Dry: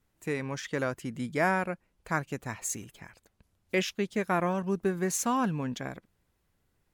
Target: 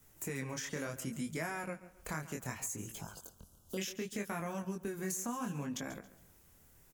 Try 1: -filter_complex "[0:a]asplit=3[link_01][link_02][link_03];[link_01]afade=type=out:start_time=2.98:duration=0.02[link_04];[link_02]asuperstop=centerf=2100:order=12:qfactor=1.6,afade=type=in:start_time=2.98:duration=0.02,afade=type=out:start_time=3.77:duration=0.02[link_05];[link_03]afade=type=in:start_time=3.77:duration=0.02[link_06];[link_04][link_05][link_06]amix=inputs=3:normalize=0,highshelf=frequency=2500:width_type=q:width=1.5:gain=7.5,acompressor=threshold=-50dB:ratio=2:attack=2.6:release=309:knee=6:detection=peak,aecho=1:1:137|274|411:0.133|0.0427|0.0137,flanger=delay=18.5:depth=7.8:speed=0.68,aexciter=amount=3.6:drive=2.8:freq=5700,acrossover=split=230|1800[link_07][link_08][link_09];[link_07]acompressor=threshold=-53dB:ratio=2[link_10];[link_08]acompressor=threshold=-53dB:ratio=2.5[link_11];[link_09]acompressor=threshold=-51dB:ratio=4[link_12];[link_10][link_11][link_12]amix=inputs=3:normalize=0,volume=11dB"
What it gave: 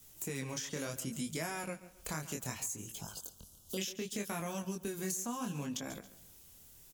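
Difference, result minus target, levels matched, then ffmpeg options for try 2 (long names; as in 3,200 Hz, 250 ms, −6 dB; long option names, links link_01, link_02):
4,000 Hz band +3.5 dB
-filter_complex "[0:a]asplit=3[link_01][link_02][link_03];[link_01]afade=type=out:start_time=2.98:duration=0.02[link_04];[link_02]asuperstop=centerf=2100:order=12:qfactor=1.6,afade=type=in:start_time=2.98:duration=0.02,afade=type=out:start_time=3.77:duration=0.02[link_05];[link_03]afade=type=in:start_time=3.77:duration=0.02[link_06];[link_04][link_05][link_06]amix=inputs=3:normalize=0,acompressor=threshold=-50dB:ratio=2:attack=2.6:release=309:knee=6:detection=peak,aecho=1:1:137|274|411:0.133|0.0427|0.0137,flanger=delay=18.5:depth=7.8:speed=0.68,aexciter=amount=3.6:drive=2.8:freq=5700,acrossover=split=230|1800[link_07][link_08][link_09];[link_07]acompressor=threshold=-53dB:ratio=2[link_10];[link_08]acompressor=threshold=-53dB:ratio=2.5[link_11];[link_09]acompressor=threshold=-51dB:ratio=4[link_12];[link_10][link_11][link_12]amix=inputs=3:normalize=0,volume=11dB"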